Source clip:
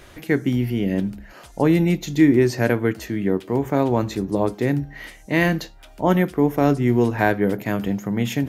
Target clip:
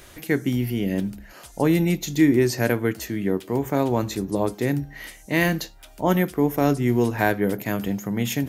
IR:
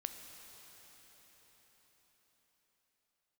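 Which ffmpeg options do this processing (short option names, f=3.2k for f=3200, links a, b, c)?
-af "highshelf=f=5.4k:g=11,volume=-2.5dB"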